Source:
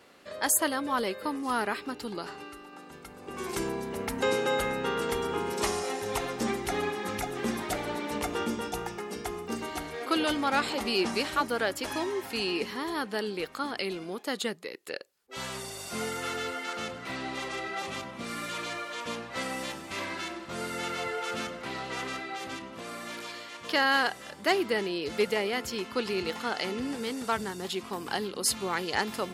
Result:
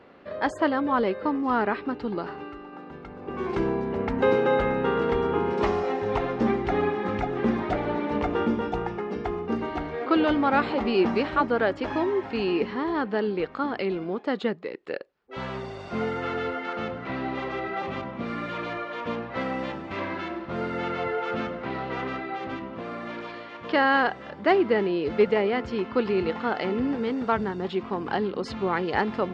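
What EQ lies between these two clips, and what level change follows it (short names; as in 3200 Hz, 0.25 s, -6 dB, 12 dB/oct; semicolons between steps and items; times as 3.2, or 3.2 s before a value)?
air absorption 81 m; tape spacing loss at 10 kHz 34 dB; +8.5 dB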